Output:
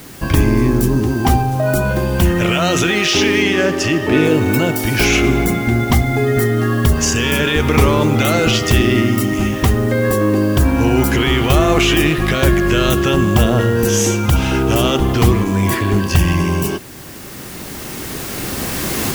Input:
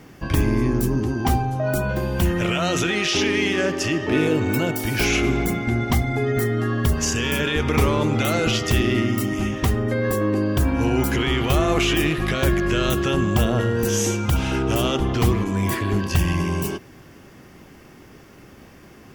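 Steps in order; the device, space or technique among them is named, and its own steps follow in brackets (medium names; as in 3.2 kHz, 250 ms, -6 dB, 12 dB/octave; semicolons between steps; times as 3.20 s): cheap recorder with automatic gain (white noise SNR 26 dB; recorder AGC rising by 7.5 dB/s); 3.42–4.25 s: treble shelf 10 kHz -7.5 dB; trim +6.5 dB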